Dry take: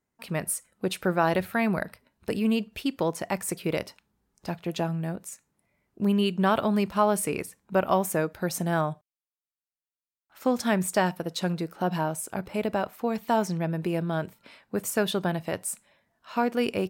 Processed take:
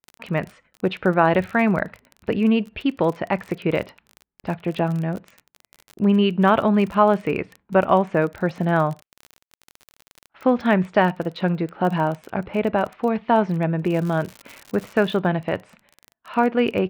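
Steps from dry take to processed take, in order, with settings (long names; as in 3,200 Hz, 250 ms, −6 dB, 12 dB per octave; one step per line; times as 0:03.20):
low-pass filter 3,000 Hz 24 dB per octave
noise gate with hold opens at −51 dBFS
surface crackle 28 per second −35 dBFS, from 0:13.92 180 per second, from 0:15.16 20 per second
level +6.5 dB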